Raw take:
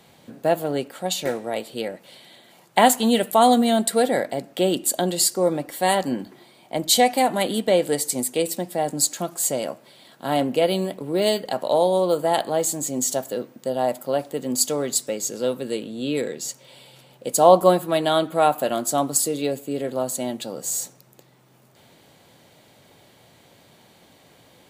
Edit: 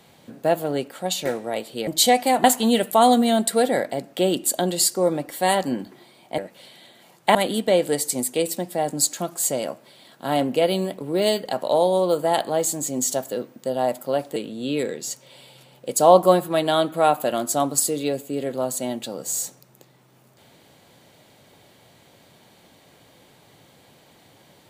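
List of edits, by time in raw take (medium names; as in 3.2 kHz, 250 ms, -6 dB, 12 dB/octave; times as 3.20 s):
1.87–2.84 s: swap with 6.78–7.35 s
14.36–15.74 s: delete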